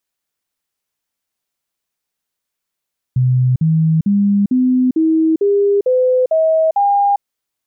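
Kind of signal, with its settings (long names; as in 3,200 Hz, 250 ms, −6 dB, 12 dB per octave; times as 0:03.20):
stepped sweep 127 Hz up, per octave 3, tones 9, 0.40 s, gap 0.05 s −10 dBFS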